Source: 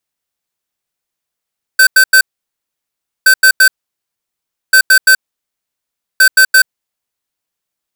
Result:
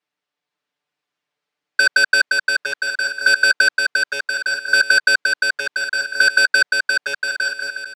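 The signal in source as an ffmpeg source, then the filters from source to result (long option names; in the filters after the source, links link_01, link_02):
-f lavfi -i "aevalsrc='0.531*(2*lt(mod(1540*t,1),0.5)-1)*clip(min(mod(mod(t,1.47),0.17),0.08-mod(mod(t,1.47),0.17))/0.005,0,1)*lt(mod(t,1.47),0.51)':duration=5.88:sample_rate=44100"
-filter_complex "[0:a]highpass=190,lowpass=3500,aecho=1:1:6.8:0.91,asplit=2[link_01][link_02];[link_02]aecho=0:1:520|858|1078|1221|1313:0.631|0.398|0.251|0.158|0.1[link_03];[link_01][link_03]amix=inputs=2:normalize=0"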